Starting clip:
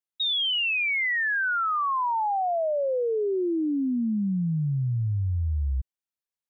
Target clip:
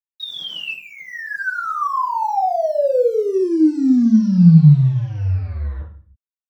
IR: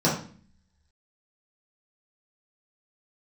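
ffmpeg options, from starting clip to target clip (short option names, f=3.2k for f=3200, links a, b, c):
-filter_complex "[0:a]asplit=3[a][b][c];[a]afade=t=out:st=0.71:d=0.02[d];[b]lowpass=f=1.7k:w=0.5412,lowpass=f=1.7k:w=1.3066,afade=t=in:st=0.71:d=0.02,afade=t=out:st=1.61:d=0.02[e];[c]afade=t=in:st=1.61:d=0.02[f];[d][e][f]amix=inputs=3:normalize=0,acrusher=bits=6:mix=0:aa=0.5[g];[1:a]atrim=start_sample=2205,afade=t=out:st=0.39:d=0.01,atrim=end_sample=17640[h];[g][h]afir=irnorm=-1:irlink=0,volume=-11.5dB"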